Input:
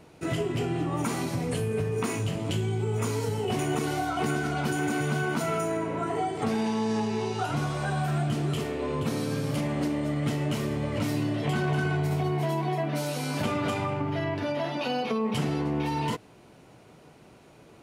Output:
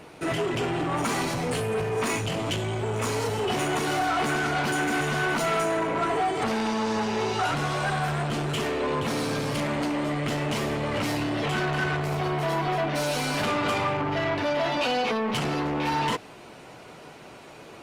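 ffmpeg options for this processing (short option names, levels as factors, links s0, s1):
-filter_complex "[0:a]asoftclip=type=tanh:threshold=0.0335,asplit=2[s0][s1];[s1]highpass=f=720:p=1,volume=2.82,asoftclip=type=tanh:threshold=0.0841[s2];[s0][s2]amix=inputs=2:normalize=0,lowpass=f=5700:p=1,volume=0.501,volume=2.24" -ar 48000 -c:a libopus -b:a 32k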